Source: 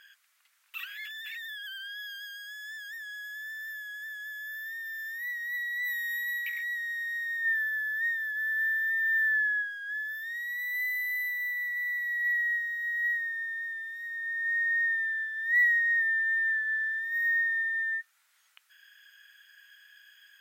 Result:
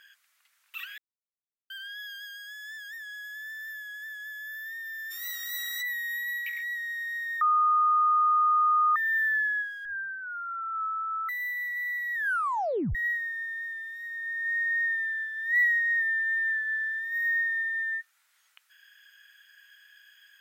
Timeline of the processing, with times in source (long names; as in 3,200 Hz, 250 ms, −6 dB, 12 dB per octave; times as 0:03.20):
0:00.98–0:01.70: silence
0:05.10–0:05.81: ceiling on every frequency bin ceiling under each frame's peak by 26 dB
0:07.41–0:08.96: beep over 1,230 Hz −19.5 dBFS
0:09.85–0:11.29: voice inversion scrambler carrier 3,300 Hz
0:12.14: tape stop 0.81 s